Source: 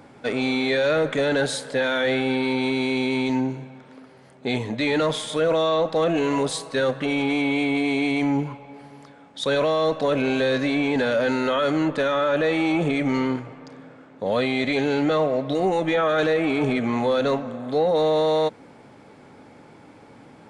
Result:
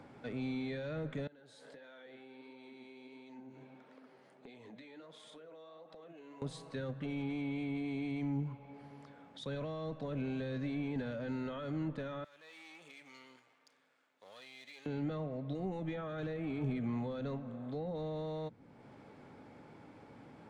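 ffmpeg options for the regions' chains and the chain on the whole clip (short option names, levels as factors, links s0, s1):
-filter_complex "[0:a]asettb=1/sr,asplit=3[s0][s1][s2];[s0]atrim=end=1.274[s3];[s1]atrim=start=1.27:end=6.42,asetpts=PTS-STARTPTS,afade=t=in:d=0.004:c=qsin,afade=t=out:st=5.146:d=0.004:c=qsin,highpass=220,acompressor=threshold=0.0158:ratio=12:attack=3.2:release=140:knee=1:detection=peak,flanger=delay=1.5:depth=9:regen=65:speed=1.5:shape=sinusoidal[s4];[s2]atrim=start=6.416[s5];[s3][s4]acrossfade=d=0.004:c1=hsin:c2=qsin[s6];[s6][s5]acrossfade=d=0.004:c1=qsin:c2=hsin,asettb=1/sr,asplit=3[s7][s8][s9];[s7]atrim=end=12.244[s10];[s8]atrim=start=12.24:end=14.86,asetpts=PTS-STARTPTS,afade=t=in:d=0.004:c=qsin,afade=t=out:st=2.616:d=0.004:c=qsin,aeval=exprs='if(lt(val(0),0),0.447*val(0),val(0))':c=same,aderivative[s11];[s9]atrim=start=14.856[s12];[s10][s11]acrossfade=d=0.004:c1=hsin:c2=qsin[s13];[s13][s12]acrossfade=d=0.004:c1=qsin:c2=hsin,highshelf=f=6500:g=-10,acrossover=split=210[s14][s15];[s15]acompressor=threshold=0.00316:ratio=2[s16];[s14][s16]amix=inputs=2:normalize=0,volume=0.501"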